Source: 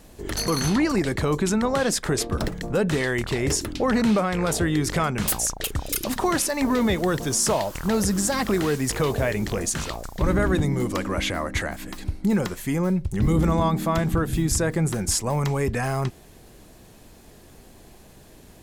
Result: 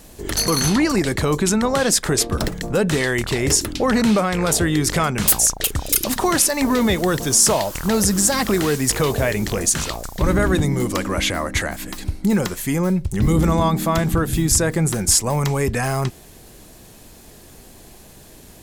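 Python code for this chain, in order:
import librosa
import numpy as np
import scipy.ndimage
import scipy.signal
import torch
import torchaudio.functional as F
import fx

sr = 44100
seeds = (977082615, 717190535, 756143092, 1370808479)

y = fx.high_shelf(x, sr, hz=4100.0, db=6.5)
y = F.gain(torch.from_numpy(y), 3.5).numpy()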